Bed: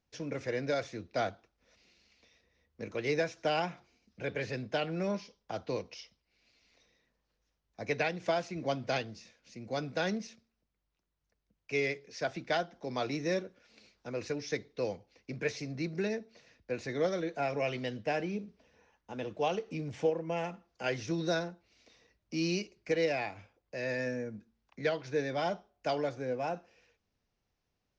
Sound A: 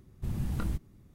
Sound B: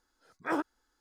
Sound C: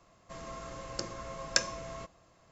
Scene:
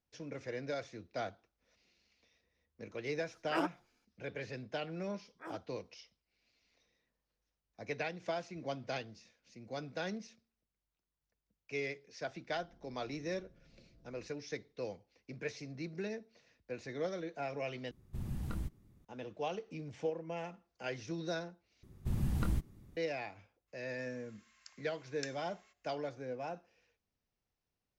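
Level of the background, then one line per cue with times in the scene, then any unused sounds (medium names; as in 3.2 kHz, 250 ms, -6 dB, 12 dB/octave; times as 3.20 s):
bed -7 dB
3.05 s: add B -4 dB
4.95 s: add B -16.5 dB
12.22 s: add C -15.5 dB + Gaussian low-pass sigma 23 samples
17.91 s: replace with A -7 dB
21.83 s: replace with A -1 dB
23.67 s: add C -10.5 dB, fades 0.02 s + ladder high-pass 1.5 kHz, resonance 35%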